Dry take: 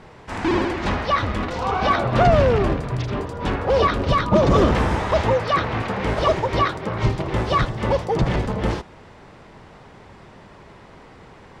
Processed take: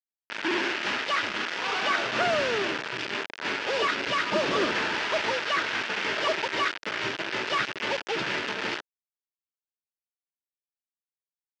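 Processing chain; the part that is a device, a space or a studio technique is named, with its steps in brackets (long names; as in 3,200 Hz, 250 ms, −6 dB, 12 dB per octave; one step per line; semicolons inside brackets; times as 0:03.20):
hand-held game console (bit reduction 4 bits; loudspeaker in its box 460–4,800 Hz, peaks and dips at 520 Hz −8 dB, 750 Hz −9 dB, 1,100 Hz −7 dB, 1,600 Hz +3 dB, 2,700 Hz +3 dB, 4,000 Hz −4 dB)
level −2 dB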